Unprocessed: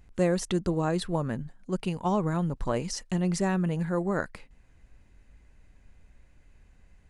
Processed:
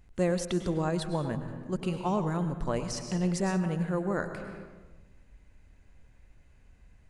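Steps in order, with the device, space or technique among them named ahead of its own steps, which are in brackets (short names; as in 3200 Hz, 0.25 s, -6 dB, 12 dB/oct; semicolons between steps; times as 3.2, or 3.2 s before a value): compressed reverb return (on a send at -3 dB: reverb RT60 1.2 s, pre-delay 94 ms + compressor 12:1, threshold -29 dBFS, peak gain reduction 11.5 dB); on the sum: gain -2.5 dB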